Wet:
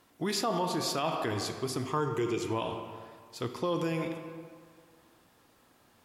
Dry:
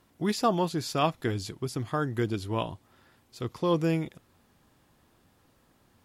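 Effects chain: 1.86–2.45 ripple EQ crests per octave 0.73, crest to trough 12 dB; reverb RT60 1.9 s, pre-delay 5 ms, DRR 6.5 dB; limiter -22 dBFS, peak gain reduction 11 dB; low shelf 180 Hz -11.5 dB; gain +2.5 dB

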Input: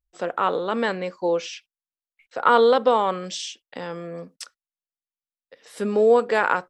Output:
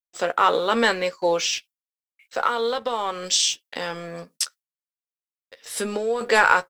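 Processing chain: 2.43–6.21 compressor 16:1, threshold -24 dBFS, peak gain reduction 14 dB; tilt +3.5 dB/oct; gate with hold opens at -53 dBFS; sample leveller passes 1; low shelf 400 Hz +4.5 dB; doubler 13 ms -9 dB

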